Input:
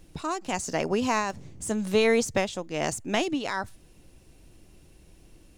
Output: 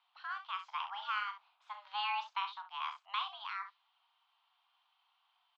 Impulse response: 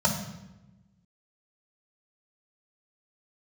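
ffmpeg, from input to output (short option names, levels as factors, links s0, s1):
-af "equalizer=f=1500:w=1.5:g=-7.5,aecho=1:1:37|66:0.335|0.282,highpass=f=590:t=q:w=0.5412,highpass=f=590:t=q:w=1.307,lowpass=f=3400:t=q:w=0.5176,lowpass=f=3400:t=q:w=0.7071,lowpass=f=3400:t=q:w=1.932,afreqshift=400,volume=0.447"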